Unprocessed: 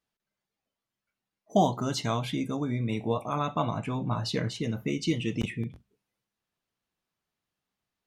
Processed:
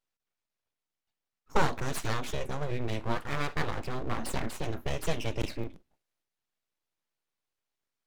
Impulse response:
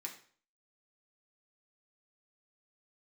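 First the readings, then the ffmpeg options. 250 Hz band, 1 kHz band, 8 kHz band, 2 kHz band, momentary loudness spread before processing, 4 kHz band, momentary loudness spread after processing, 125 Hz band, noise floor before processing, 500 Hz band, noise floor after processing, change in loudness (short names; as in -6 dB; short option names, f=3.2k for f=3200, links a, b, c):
-8.5 dB, -3.5 dB, 0.0 dB, +3.5 dB, 6 LU, -4.0 dB, 6 LU, -4.5 dB, under -85 dBFS, -3.5 dB, under -85 dBFS, -4.0 dB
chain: -af "aeval=exprs='abs(val(0))':c=same"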